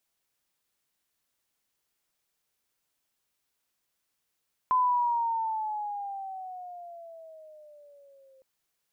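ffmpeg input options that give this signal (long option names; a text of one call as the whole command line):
ffmpeg -f lavfi -i "aevalsrc='pow(10,(-20-35.5*t/3.71)/20)*sin(2*PI*1020*3.71/(-11.5*log(2)/12)*(exp(-11.5*log(2)/12*t/3.71)-1))':duration=3.71:sample_rate=44100" out.wav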